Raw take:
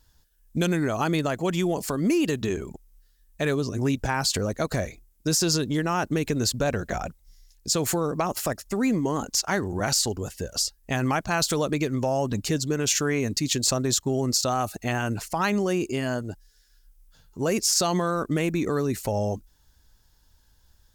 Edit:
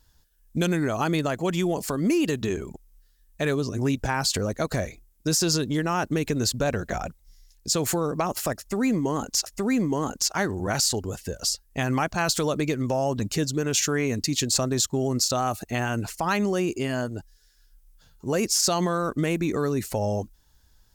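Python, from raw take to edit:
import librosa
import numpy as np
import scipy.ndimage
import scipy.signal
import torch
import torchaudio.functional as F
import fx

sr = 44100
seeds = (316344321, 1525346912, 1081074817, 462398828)

y = fx.edit(x, sr, fx.repeat(start_s=8.59, length_s=0.87, count=2), tone=tone)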